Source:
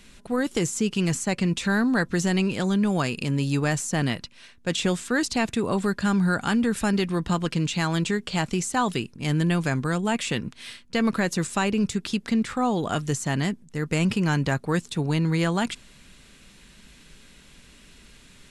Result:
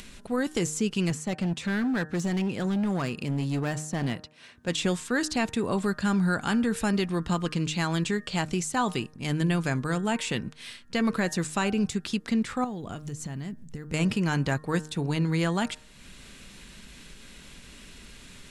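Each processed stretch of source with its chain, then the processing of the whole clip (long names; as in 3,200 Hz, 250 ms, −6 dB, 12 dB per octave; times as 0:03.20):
0:01.10–0:04.68: high-pass filter 72 Hz + high-shelf EQ 2,200 Hz −6 dB + gain into a clipping stage and back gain 21 dB
0:12.64–0:13.94: low-shelf EQ 240 Hz +11 dB + downward compressor 8 to 1, threshold −29 dBFS + floating-point word with a short mantissa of 6 bits
whole clip: hum removal 153.5 Hz, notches 12; upward compression, threshold −36 dBFS; level −2.5 dB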